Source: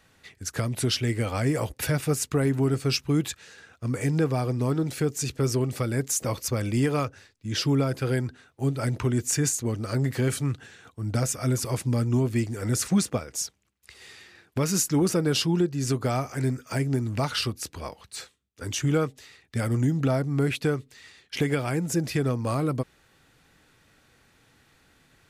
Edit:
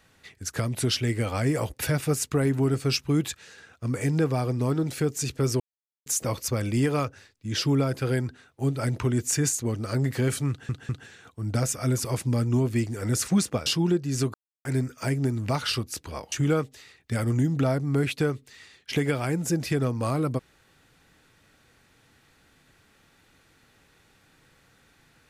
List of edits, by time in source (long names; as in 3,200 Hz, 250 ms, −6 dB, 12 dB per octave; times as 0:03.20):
0:05.60–0:06.06: silence
0:10.49: stutter 0.20 s, 3 plays
0:13.26–0:15.35: remove
0:16.03–0:16.34: silence
0:18.01–0:18.76: remove